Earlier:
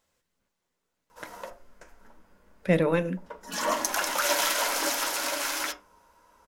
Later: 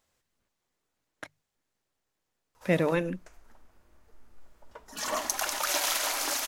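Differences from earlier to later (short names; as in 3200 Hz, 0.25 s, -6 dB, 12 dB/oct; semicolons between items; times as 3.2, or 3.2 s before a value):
background: entry +1.45 s; reverb: off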